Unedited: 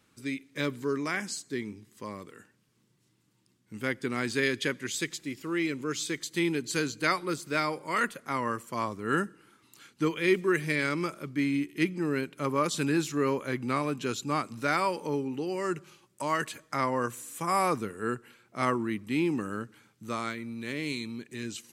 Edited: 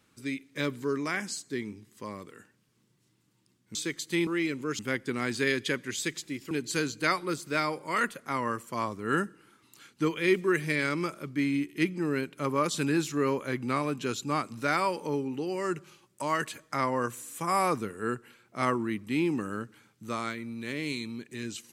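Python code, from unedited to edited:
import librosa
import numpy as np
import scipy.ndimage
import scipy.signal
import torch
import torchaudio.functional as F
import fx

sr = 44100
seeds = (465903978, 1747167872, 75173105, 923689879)

y = fx.edit(x, sr, fx.swap(start_s=3.75, length_s=1.72, other_s=5.99, other_length_s=0.52), tone=tone)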